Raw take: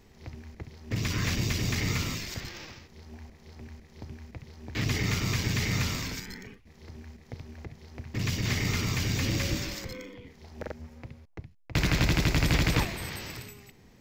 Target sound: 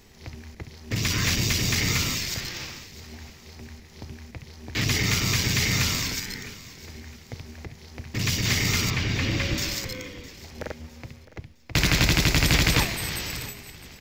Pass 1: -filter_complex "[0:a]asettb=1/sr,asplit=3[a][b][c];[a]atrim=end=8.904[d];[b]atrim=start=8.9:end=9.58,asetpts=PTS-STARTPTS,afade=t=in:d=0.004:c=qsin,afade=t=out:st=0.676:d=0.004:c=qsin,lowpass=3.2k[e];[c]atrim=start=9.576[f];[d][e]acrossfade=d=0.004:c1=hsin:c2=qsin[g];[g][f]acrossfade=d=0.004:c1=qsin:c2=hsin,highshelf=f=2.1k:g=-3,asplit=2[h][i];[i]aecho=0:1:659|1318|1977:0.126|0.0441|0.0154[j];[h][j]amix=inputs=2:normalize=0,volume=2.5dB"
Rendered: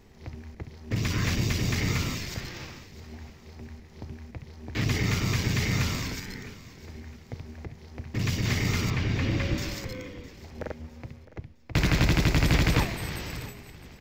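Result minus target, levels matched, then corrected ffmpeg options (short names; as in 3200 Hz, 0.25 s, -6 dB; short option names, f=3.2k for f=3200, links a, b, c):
4000 Hz band -4.5 dB
-filter_complex "[0:a]asettb=1/sr,asplit=3[a][b][c];[a]atrim=end=8.904[d];[b]atrim=start=8.9:end=9.58,asetpts=PTS-STARTPTS,afade=t=in:d=0.004:c=qsin,afade=t=out:st=0.676:d=0.004:c=qsin,lowpass=3.2k[e];[c]atrim=start=9.576[f];[d][e]acrossfade=d=0.004:c1=hsin:c2=qsin[g];[g][f]acrossfade=d=0.004:c1=qsin:c2=hsin,highshelf=f=2.1k:g=8,asplit=2[h][i];[i]aecho=0:1:659|1318|1977:0.126|0.0441|0.0154[j];[h][j]amix=inputs=2:normalize=0,volume=2.5dB"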